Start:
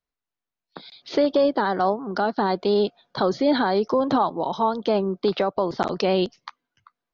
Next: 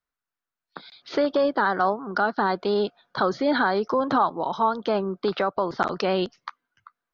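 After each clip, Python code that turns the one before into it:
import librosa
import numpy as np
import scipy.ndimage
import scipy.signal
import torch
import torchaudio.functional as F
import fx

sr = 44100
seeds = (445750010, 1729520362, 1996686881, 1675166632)

y = fx.peak_eq(x, sr, hz=1400.0, db=9.5, octaves=0.95)
y = y * 10.0 ** (-3.5 / 20.0)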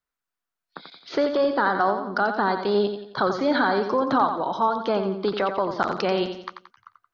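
y = fx.echo_feedback(x, sr, ms=88, feedback_pct=42, wet_db=-8.0)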